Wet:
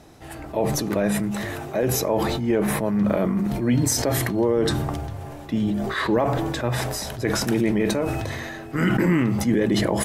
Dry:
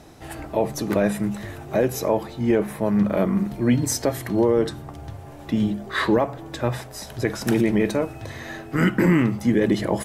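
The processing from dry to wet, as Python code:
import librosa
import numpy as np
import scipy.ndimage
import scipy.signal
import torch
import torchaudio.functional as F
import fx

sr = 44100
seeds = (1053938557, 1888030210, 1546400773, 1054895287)

y = fx.low_shelf(x, sr, hz=150.0, db=-8.5, at=(1.31, 1.83))
y = fx.sustainer(y, sr, db_per_s=23.0)
y = F.gain(torch.from_numpy(y), -2.5).numpy()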